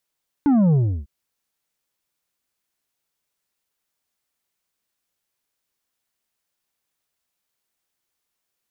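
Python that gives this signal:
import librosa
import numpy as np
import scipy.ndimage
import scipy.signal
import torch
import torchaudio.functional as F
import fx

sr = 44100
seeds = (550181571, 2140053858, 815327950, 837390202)

y = fx.sub_drop(sr, level_db=-14.0, start_hz=300.0, length_s=0.6, drive_db=6.5, fade_s=0.33, end_hz=65.0)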